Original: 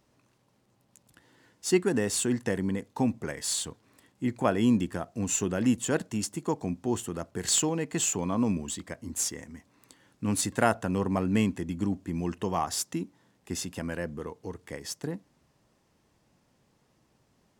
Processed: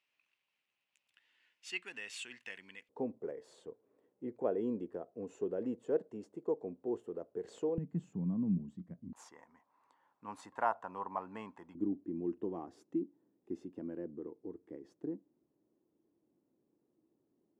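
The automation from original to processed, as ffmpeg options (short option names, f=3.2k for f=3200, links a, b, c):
-af "asetnsamples=n=441:p=0,asendcmd='2.89 bandpass f 450;7.78 bandpass f 180;9.13 bandpass f 950;11.75 bandpass f 330',bandpass=f=2.6k:t=q:w=4:csg=0"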